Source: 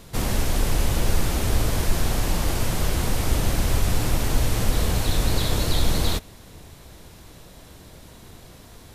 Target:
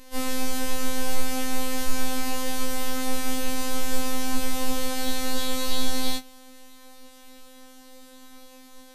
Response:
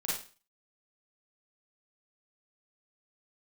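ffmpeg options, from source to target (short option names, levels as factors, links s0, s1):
-af "afftfilt=real='hypot(re,im)*cos(PI*b)':imag='0':win_size=2048:overlap=0.75,afftfilt=real='re*3.46*eq(mod(b,12),0)':imag='im*3.46*eq(mod(b,12),0)':win_size=2048:overlap=0.75,volume=0.841"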